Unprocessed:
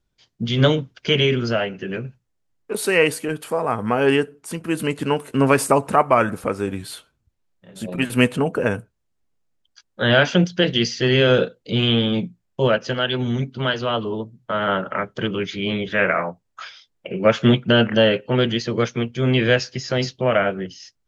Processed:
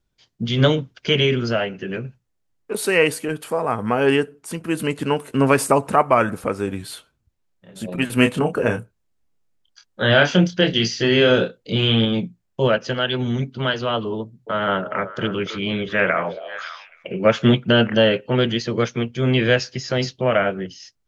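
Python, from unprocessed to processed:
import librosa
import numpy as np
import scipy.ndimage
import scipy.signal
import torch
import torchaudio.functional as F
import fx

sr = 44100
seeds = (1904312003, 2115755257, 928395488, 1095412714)

y = fx.doubler(x, sr, ms=27.0, db=-6, at=(8.15, 12.05))
y = fx.echo_stepped(y, sr, ms=275, hz=530.0, octaves=1.4, feedback_pct=70, wet_db=-9.0, at=(14.19, 17.12))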